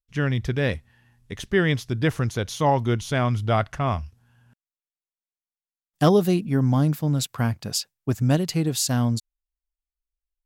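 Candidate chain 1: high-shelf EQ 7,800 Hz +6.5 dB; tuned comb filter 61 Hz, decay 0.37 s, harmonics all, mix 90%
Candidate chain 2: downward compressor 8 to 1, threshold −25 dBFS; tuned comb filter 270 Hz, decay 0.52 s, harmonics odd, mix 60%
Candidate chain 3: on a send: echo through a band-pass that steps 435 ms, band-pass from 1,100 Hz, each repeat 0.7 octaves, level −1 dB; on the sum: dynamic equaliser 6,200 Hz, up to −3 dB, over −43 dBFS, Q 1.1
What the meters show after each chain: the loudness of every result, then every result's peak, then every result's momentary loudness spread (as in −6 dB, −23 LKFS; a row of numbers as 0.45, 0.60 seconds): −30.0, −38.0, −23.5 LKFS; −13.0, −22.0, −8.0 dBFS; 8, 6, 17 LU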